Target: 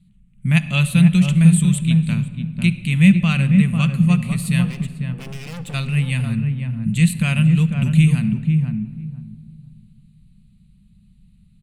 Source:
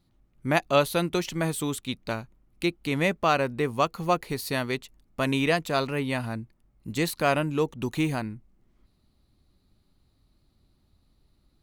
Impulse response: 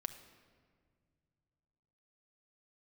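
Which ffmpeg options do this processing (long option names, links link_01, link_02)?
-filter_complex "[0:a]firequalizer=gain_entry='entry(100,0);entry(200,11);entry(290,-23);entry(740,-23);entry(2600,0);entry(5300,-17);entry(8300,5);entry(16000,-20)':delay=0.05:min_phase=1,asettb=1/sr,asplit=3[link_01][link_02][link_03];[link_01]atrim=end=4.634[link_04];[link_02]atrim=start=4.63:end=5.74,asetpts=PTS-STARTPTS,afade=type=in:duration=0.004:curve=qsin,afade=type=out:start_time=1.106:duration=0.004:curve=qsin,aeval=exprs='(tanh(112*val(0)+0.2)-tanh(0.2))/112':channel_layout=same[link_05];[link_03]atrim=start=5.736[link_06];[link_04][link_05]acrossfade=duration=0.004:curve1=hsin:curve2=qsin[link_07];[link_07][link_06]acrossfade=duration=0.004:curve1=qsin:curve2=hsin,asplit=2[link_08][link_09];[link_09]adelay=497,lowpass=frequency=810:poles=1,volume=-3dB,asplit=2[link_10][link_11];[link_11]adelay=497,lowpass=frequency=810:poles=1,volume=0.22,asplit=2[link_12][link_13];[link_13]adelay=497,lowpass=frequency=810:poles=1,volume=0.22[link_14];[link_08][link_10][link_12][link_14]amix=inputs=4:normalize=0,asplit=2[link_15][link_16];[1:a]atrim=start_sample=2205,highshelf=frequency=10000:gain=-9[link_17];[link_16][link_17]afir=irnorm=-1:irlink=0,volume=8.5dB[link_18];[link_15][link_18]amix=inputs=2:normalize=0"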